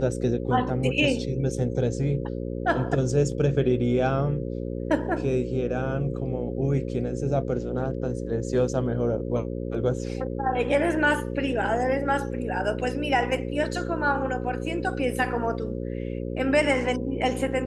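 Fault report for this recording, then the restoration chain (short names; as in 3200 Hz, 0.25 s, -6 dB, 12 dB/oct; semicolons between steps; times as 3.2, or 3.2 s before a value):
buzz 60 Hz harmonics 9 -31 dBFS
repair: de-hum 60 Hz, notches 9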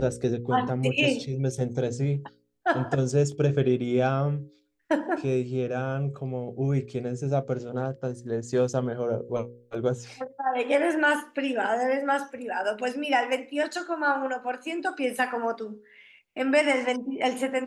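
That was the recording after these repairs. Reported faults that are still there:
none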